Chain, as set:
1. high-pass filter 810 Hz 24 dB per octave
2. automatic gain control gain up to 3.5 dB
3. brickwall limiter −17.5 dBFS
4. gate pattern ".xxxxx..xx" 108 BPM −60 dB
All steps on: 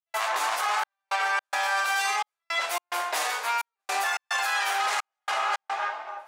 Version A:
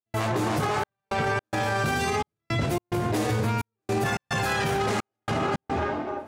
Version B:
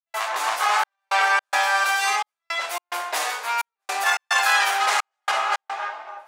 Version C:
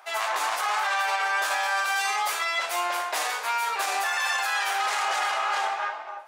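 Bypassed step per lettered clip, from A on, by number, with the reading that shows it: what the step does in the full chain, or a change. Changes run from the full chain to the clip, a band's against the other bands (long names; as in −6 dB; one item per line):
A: 1, 250 Hz band +31.0 dB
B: 3, average gain reduction 3.5 dB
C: 4, change in crest factor −1.5 dB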